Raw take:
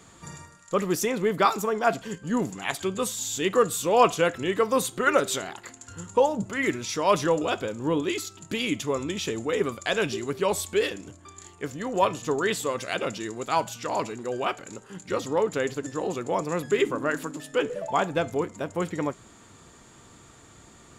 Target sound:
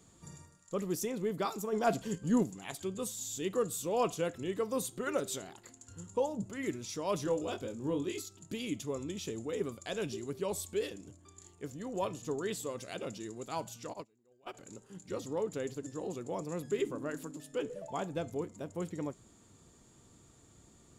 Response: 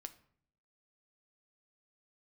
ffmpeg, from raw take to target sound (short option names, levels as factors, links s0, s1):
-filter_complex "[0:a]asplit=3[s0][s1][s2];[s0]afade=t=out:st=1.72:d=0.02[s3];[s1]acontrast=71,afade=t=in:st=1.72:d=0.02,afade=t=out:st=2.42:d=0.02[s4];[s2]afade=t=in:st=2.42:d=0.02[s5];[s3][s4][s5]amix=inputs=3:normalize=0,asettb=1/sr,asplit=3[s6][s7][s8];[s6]atrim=end=7.244[s9];[s7]atrim=start=7.24:end=8.22,asetpts=PTS-STARTPTS,afade=t=in:d=0.004:c=qsin,afade=t=out:st=0.976:d=0.004:c=qsin,asplit=2[s10][s11];[s11]adelay=22,volume=0.501[s12];[s10][s12]amix=inputs=2:normalize=0,atrim=end_sample=43218[s13];[s8]atrim=start=8.216[s14];[s9][s13]acrossfade=d=0.004:c1=hsin:c2=qsin[s15];[s15][s14]acrossfade=d=0.004:c1=qsin:c2=hsin,asplit=3[s16][s17][s18];[s16]afade=t=out:st=13.92:d=0.02[s19];[s17]agate=range=0.0398:threshold=0.0631:ratio=16:detection=peak,afade=t=in:st=13.92:d=0.02,afade=t=out:st=14.53:d=0.02[s20];[s18]afade=t=in:st=14.53:d=0.02[s21];[s19][s20][s21]amix=inputs=3:normalize=0,equalizer=f=1600:w=0.48:g=-10,volume=0.447"